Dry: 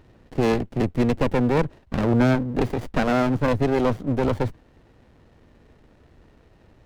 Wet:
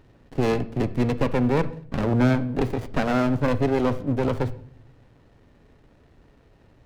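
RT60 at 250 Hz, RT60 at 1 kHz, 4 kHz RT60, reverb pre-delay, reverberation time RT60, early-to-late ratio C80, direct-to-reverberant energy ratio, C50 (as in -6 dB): 0.95 s, 0.50 s, 0.45 s, 7 ms, 0.55 s, 20.0 dB, 11.0 dB, 16.0 dB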